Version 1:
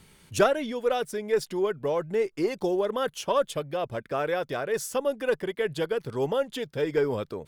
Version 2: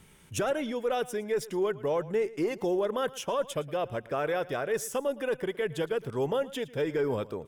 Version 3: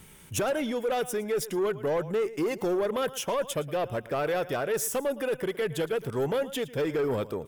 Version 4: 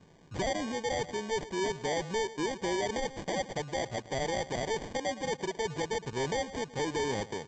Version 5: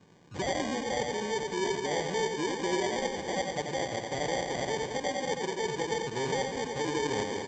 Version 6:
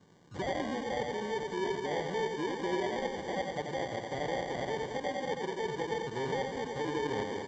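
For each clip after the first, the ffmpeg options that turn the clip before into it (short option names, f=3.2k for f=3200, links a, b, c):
-af "equalizer=f=4.4k:t=o:w=0.28:g=-10,alimiter=limit=-19.5dB:level=0:latency=1:release=23,aecho=1:1:113|226:0.112|0.0292,volume=-1dB"
-af "highshelf=f=12k:g=12,asoftclip=type=tanh:threshold=-26dB,volume=4dB"
-af "highpass=f=88:w=0.5412,highpass=f=88:w=1.3066,aresample=16000,acrusher=samples=12:mix=1:aa=0.000001,aresample=44100,volume=-4.5dB"
-af "highpass=f=110:p=1,bandreject=f=650:w=14,aecho=1:1:90|202.5|343.1|518.9|738.6:0.631|0.398|0.251|0.158|0.1"
-filter_complex "[0:a]bandreject=f=2.5k:w=5.4,acrossover=split=3800[a][b];[b]acompressor=threshold=-53dB:ratio=4:attack=1:release=60[c];[a][c]amix=inputs=2:normalize=0,volume=-2.5dB"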